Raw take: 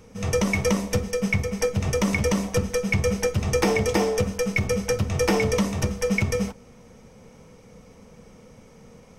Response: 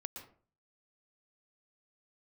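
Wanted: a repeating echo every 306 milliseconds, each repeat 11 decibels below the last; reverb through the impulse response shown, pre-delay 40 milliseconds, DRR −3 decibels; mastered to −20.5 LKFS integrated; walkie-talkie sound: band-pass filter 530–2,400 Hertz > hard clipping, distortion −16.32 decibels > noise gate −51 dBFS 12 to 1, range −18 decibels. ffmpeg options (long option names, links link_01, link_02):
-filter_complex "[0:a]aecho=1:1:306|612|918:0.282|0.0789|0.0221,asplit=2[link_01][link_02];[1:a]atrim=start_sample=2205,adelay=40[link_03];[link_02][link_03]afir=irnorm=-1:irlink=0,volume=5.5dB[link_04];[link_01][link_04]amix=inputs=2:normalize=0,highpass=530,lowpass=2400,asoftclip=type=hard:threshold=-18.5dB,agate=range=-18dB:threshold=-51dB:ratio=12,volume=5dB"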